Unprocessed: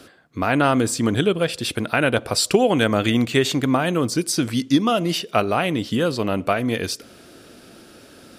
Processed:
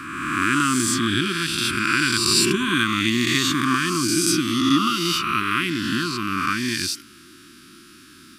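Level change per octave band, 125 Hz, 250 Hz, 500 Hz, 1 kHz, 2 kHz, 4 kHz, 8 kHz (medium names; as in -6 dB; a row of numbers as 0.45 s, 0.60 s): -4.0 dB, -1.0 dB, -10.0 dB, 0.0 dB, +4.0 dB, +4.5 dB, +4.5 dB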